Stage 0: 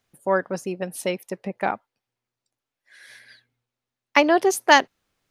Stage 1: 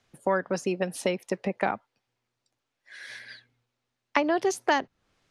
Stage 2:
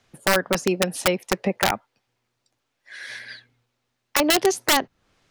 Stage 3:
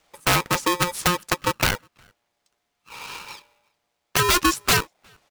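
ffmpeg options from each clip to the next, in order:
-filter_complex "[0:a]lowpass=7200,acrossover=split=200|1600[s0][s1][s2];[s0]acompressor=threshold=0.00631:ratio=4[s3];[s1]acompressor=threshold=0.0316:ratio=4[s4];[s2]acompressor=threshold=0.01:ratio=4[s5];[s3][s4][s5]amix=inputs=3:normalize=0,volume=1.78"
-af "aeval=exprs='(mod(6.68*val(0)+1,2)-1)/6.68':c=same,volume=2"
-filter_complex "[0:a]asplit=2[s0][s1];[s1]adelay=360,highpass=300,lowpass=3400,asoftclip=type=hard:threshold=0.106,volume=0.0355[s2];[s0][s2]amix=inputs=2:normalize=0,aeval=exprs='val(0)*sgn(sin(2*PI*710*n/s))':c=same"

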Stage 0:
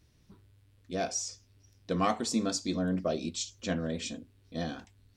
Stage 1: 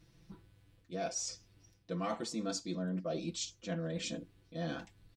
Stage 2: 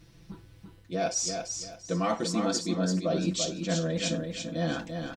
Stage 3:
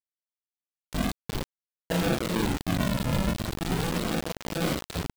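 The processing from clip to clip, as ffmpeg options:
-af "highshelf=f=4700:g=-5.5,aecho=1:1:6:0.81,areverse,acompressor=threshold=0.0141:ratio=4,areverse,volume=1.12"
-af "aecho=1:1:339|678|1017|1356:0.501|0.14|0.0393|0.011,volume=2.66"
-filter_complex "[0:a]aresample=8000,acrusher=samples=14:mix=1:aa=0.000001:lfo=1:lforange=14:lforate=0.4,aresample=44100,asplit=2[s0][s1];[s1]adelay=40,volume=0.668[s2];[s0][s2]amix=inputs=2:normalize=0,acrusher=bits=4:mix=0:aa=0.000001"

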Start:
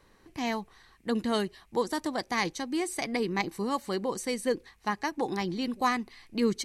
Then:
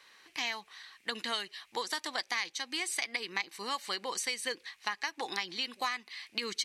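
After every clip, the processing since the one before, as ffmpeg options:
-af "highpass=f=1300:p=1,equalizer=f=3000:t=o:w=2.6:g=12,acompressor=threshold=0.0282:ratio=5"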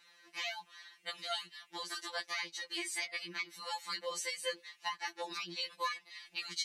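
-af "afftfilt=real='re*2.83*eq(mod(b,8),0)':imag='im*2.83*eq(mod(b,8),0)':win_size=2048:overlap=0.75,volume=0.794"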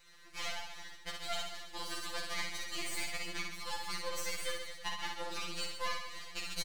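-filter_complex "[0:a]asplit=2[s0][s1];[s1]acompressor=threshold=0.00501:ratio=6,volume=0.708[s2];[s0][s2]amix=inputs=2:normalize=0,aeval=exprs='max(val(0),0)':c=same,aecho=1:1:60|132|218.4|322.1|446.5:0.631|0.398|0.251|0.158|0.1"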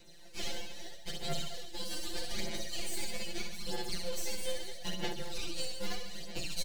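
-filter_complex "[0:a]acrossover=split=790|2300[s0][s1][s2];[s1]acrusher=samples=36:mix=1:aa=0.000001[s3];[s0][s3][s2]amix=inputs=3:normalize=0,aphaser=in_gain=1:out_gain=1:delay=4:decay=0.52:speed=0.79:type=sinusoidal,asoftclip=type=tanh:threshold=0.0562,volume=1.26"

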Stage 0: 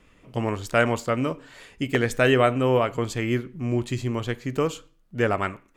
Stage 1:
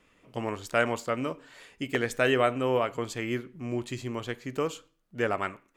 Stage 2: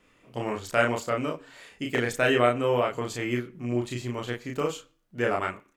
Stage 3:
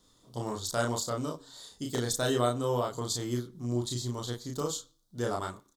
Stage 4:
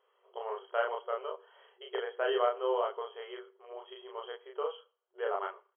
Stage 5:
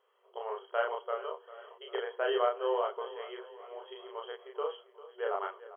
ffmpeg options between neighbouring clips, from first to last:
-af "lowshelf=f=150:g=-10.5,volume=0.631"
-filter_complex "[0:a]asplit=2[s0][s1];[s1]adelay=33,volume=0.794[s2];[s0][s2]amix=inputs=2:normalize=0"
-af "firequalizer=gain_entry='entry(120,0);entry(190,-3);entry(580,-7);entry(980,-3);entry(2500,-24);entry(3600,8);entry(14000,5)':delay=0.05:min_phase=1"
-af "afftfilt=real='re*between(b*sr/4096,370,3300)':imag='im*between(b*sr/4096,370,3300)':win_size=4096:overlap=0.75"
-af "aecho=1:1:397|794|1191|1588|1985:0.15|0.0868|0.0503|0.0292|0.0169"

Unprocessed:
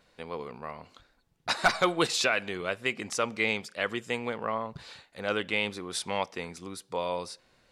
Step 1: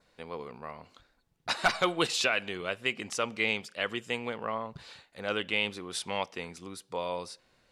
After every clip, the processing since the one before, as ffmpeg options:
-af "adynamicequalizer=threshold=0.00562:dfrequency=2900:dqfactor=3.8:tfrequency=2900:tqfactor=3.8:attack=5:release=100:ratio=0.375:range=3:mode=boostabove:tftype=bell,volume=0.75"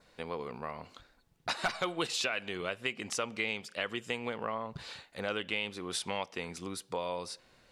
-af "acompressor=threshold=0.0126:ratio=2.5,volume=1.58"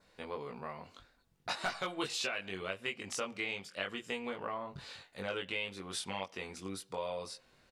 -filter_complex "[0:a]asplit=2[s0][s1];[s1]adelay=21,volume=0.708[s2];[s0][s2]amix=inputs=2:normalize=0,volume=0.562"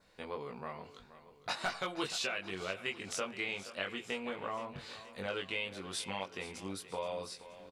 -af "aecho=1:1:475|950|1425|1900|2375:0.178|0.0978|0.0538|0.0296|0.0163"

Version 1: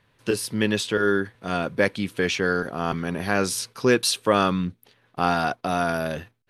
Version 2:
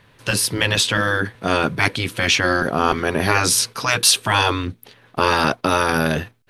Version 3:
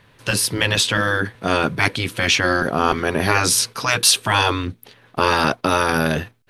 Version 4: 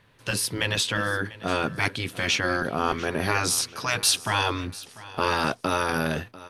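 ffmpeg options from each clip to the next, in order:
-af "afftfilt=real='re*lt(hypot(re,im),0.251)':imag='im*lt(hypot(re,im),0.251)':win_size=1024:overlap=0.75,acontrast=82,volume=1.58"
-af anull
-af "aecho=1:1:694|1388|2082:0.119|0.038|0.0122,volume=0.447"

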